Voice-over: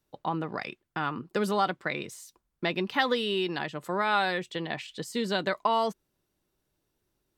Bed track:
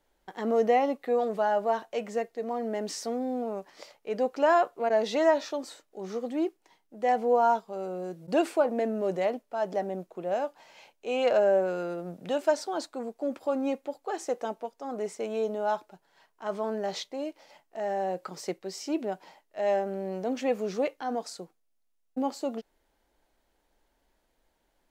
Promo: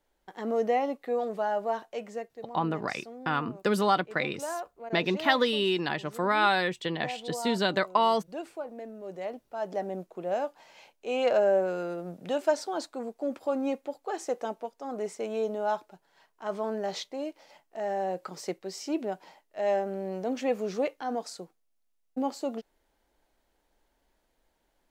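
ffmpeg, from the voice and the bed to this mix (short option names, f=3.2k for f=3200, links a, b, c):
-filter_complex "[0:a]adelay=2300,volume=2dB[a];[1:a]volume=9.5dB,afade=t=out:st=1.83:d=0.76:silence=0.316228,afade=t=in:st=9.02:d=0.99:silence=0.237137[b];[a][b]amix=inputs=2:normalize=0"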